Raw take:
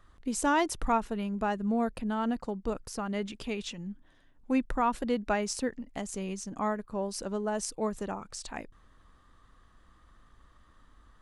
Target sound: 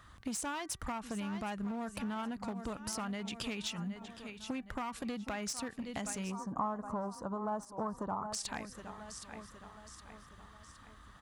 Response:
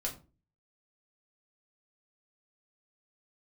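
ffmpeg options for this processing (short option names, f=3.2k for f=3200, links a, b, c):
-filter_complex "[0:a]aecho=1:1:766|1532|2298|3064:0.15|0.0703|0.0331|0.0155,alimiter=level_in=0.5dB:limit=-24dB:level=0:latency=1:release=137,volume=-0.5dB,aeval=exprs='clip(val(0),-1,0.0211)':c=same,highpass=69,equalizer=f=410:t=o:w=1.5:g=-9,acompressor=threshold=-44dB:ratio=6,asplit=3[a][b][c];[a]afade=t=out:st=6.3:d=0.02[d];[b]highshelf=f=1.6k:t=q:w=3:g=-14,afade=t=in:st=6.3:d=0.02,afade=t=out:st=8.32:d=0.02[e];[c]afade=t=in:st=8.32:d=0.02[f];[d][e][f]amix=inputs=3:normalize=0,bandreject=f=385.7:t=h:w=4,bandreject=f=771.4:t=h:w=4,bandreject=f=1.1571k:t=h:w=4,bandreject=f=1.5428k:t=h:w=4,bandreject=f=1.9285k:t=h:w=4,bandreject=f=2.3142k:t=h:w=4,volume=8dB"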